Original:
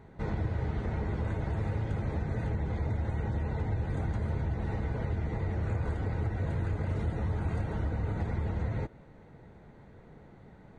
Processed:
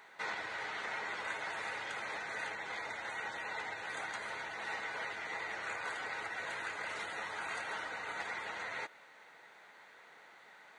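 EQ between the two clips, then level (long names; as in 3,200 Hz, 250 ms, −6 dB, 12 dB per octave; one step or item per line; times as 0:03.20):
high-pass filter 1,500 Hz 12 dB per octave
+11.0 dB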